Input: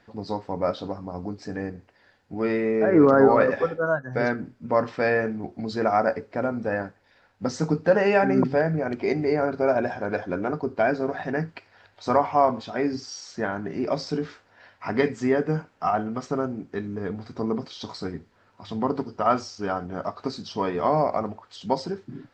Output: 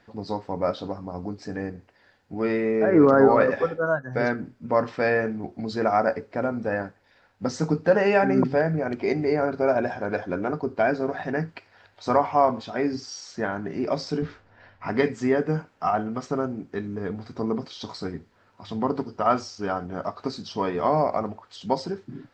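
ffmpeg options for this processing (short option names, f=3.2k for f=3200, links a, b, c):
-filter_complex "[0:a]asettb=1/sr,asplit=3[a][b][c];[a]atrim=end=14.224[d];[b]atrim=start=14.22:end=14.88,asetpts=PTS-STARTPTS,afade=t=in:d=0.004:c=qsin,afade=t=out:st=0.656:d=0.004:c=qsin,aemphasis=mode=reproduction:type=bsi[e];[c]atrim=start=14.876[f];[d][e]acrossfade=d=0.004:c1=hsin:c2=qsin[g];[g][f]acrossfade=d=0.004:c1=qsin:c2=hsin"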